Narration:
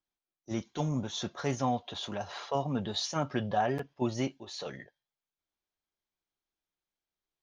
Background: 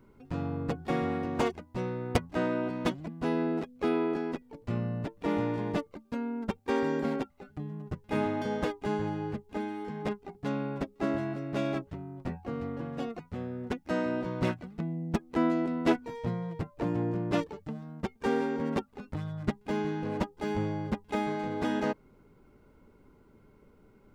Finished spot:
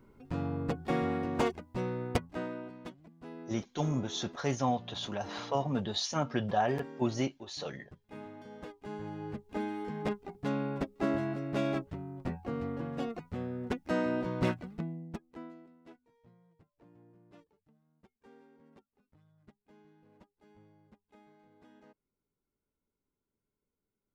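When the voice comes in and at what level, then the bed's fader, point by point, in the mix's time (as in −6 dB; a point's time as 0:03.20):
3.00 s, 0.0 dB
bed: 0:02.02 −1 dB
0:02.93 −17 dB
0:08.51 −17 dB
0:09.61 −0.5 dB
0:14.74 −0.5 dB
0:15.79 −30 dB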